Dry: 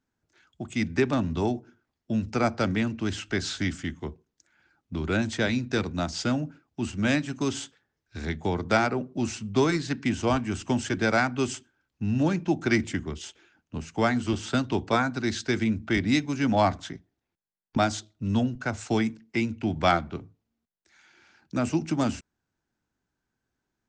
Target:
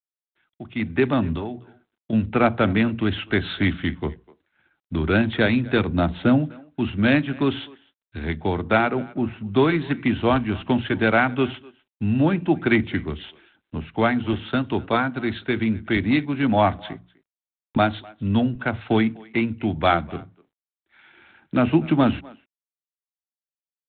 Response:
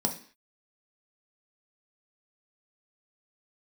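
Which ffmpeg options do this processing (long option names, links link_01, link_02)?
-filter_complex "[0:a]asplit=3[link_01][link_02][link_03];[link_01]afade=type=out:start_time=9.02:duration=0.02[link_04];[link_02]lowpass=1700,afade=type=in:start_time=9.02:duration=0.02,afade=type=out:start_time=9.45:duration=0.02[link_05];[link_03]afade=type=in:start_time=9.45:duration=0.02[link_06];[link_04][link_05][link_06]amix=inputs=3:normalize=0,bandreject=frequency=60:width_type=h:width=6,bandreject=frequency=120:width_type=h:width=6,bandreject=frequency=180:width_type=h:width=6,agate=range=-33dB:threshold=-59dB:ratio=3:detection=peak,asettb=1/sr,asplit=3[link_07][link_08][link_09];[link_07]atrim=end=1.364[link_10];[link_08]atrim=start=1.36:end=2.13,asetpts=PTS-STARTPTS,afade=type=in:duration=0.004:curve=qsin,afade=type=out:start_time=0.766:duration=0.004:curve=qsin,acompressor=threshold=-34dB:ratio=5[link_11];[link_09]atrim=start=2.126[link_12];[link_10][link_11]acrossfade=duration=0.004:curve1=hsin:curve2=qsin[link_13];[link_13][link_12]acrossfade=duration=0.004:curve1=qsin:curve2=hsin,asplit=3[link_14][link_15][link_16];[link_14]afade=type=out:start_time=5.88:duration=0.02[link_17];[link_15]tiltshelf=frequency=970:gain=3.5,afade=type=in:start_time=5.88:duration=0.02,afade=type=out:start_time=6.39:duration=0.02[link_18];[link_16]afade=type=in:start_time=6.39:duration=0.02[link_19];[link_17][link_18][link_19]amix=inputs=3:normalize=0,asplit=2[link_20][link_21];[link_21]adelay=250,highpass=300,lowpass=3400,asoftclip=type=hard:threshold=-17.5dB,volume=-22dB[link_22];[link_20][link_22]amix=inputs=2:normalize=0,dynaudnorm=framelen=340:gausssize=5:maxgain=14.5dB,volume=-4.5dB" -ar 8000 -c:a adpcm_g726 -b:a 32k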